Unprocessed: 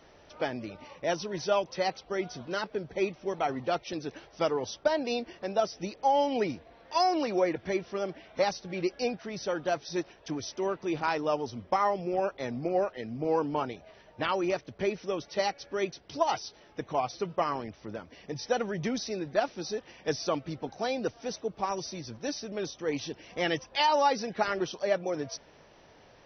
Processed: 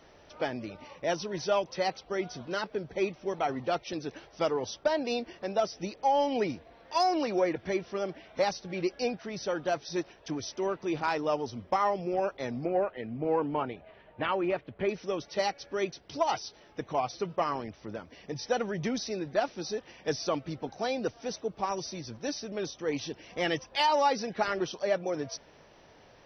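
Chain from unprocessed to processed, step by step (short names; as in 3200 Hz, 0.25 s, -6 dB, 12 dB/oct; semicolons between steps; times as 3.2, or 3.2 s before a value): soft clip -14 dBFS, distortion -27 dB; 12.65–14.89 LPF 3200 Hz 24 dB/oct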